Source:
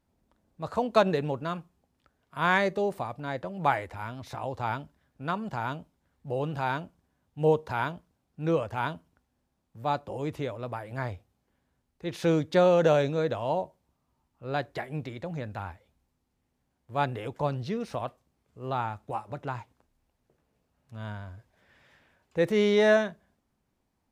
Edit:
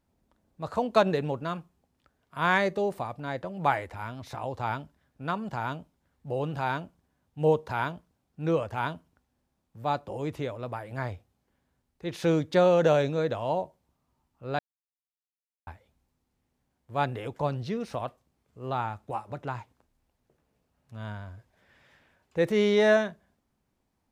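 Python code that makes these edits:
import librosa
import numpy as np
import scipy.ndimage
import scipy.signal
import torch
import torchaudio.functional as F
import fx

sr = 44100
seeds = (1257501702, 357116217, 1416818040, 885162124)

y = fx.edit(x, sr, fx.silence(start_s=14.59, length_s=1.08), tone=tone)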